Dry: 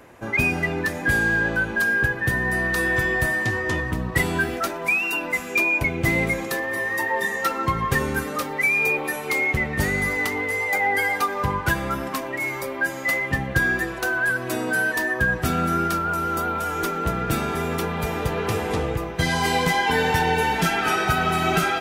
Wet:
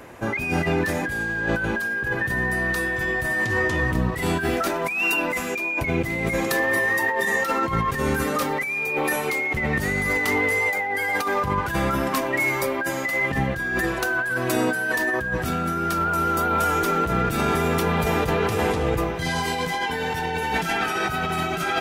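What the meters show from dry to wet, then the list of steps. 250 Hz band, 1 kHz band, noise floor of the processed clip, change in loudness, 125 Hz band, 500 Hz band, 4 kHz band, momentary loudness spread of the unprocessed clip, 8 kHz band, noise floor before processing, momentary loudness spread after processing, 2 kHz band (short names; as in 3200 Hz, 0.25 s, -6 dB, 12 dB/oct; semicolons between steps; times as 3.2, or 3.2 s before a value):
+1.0 dB, 0.0 dB, -28 dBFS, -0.5 dB, -0.5 dB, +1.5 dB, -1.0 dB, 5 LU, -0.5 dB, -31 dBFS, 4 LU, -1.5 dB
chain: negative-ratio compressor -26 dBFS, ratio -1; gain +2.5 dB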